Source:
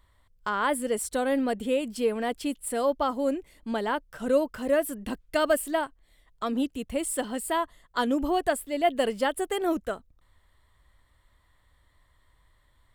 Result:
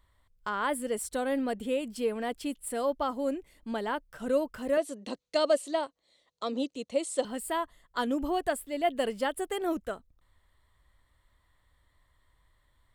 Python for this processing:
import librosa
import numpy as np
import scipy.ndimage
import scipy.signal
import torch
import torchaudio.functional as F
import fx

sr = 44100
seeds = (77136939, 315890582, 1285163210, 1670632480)

y = fx.cabinet(x, sr, low_hz=220.0, low_slope=12, high_hz=8700.0, hz=(530.0, 1600.0, 4100.0, 6300.0), db=(8, -8, 10, 8), at=(4.77, 7.25))
y = y * librosa.db_to_amplitude(-4.0)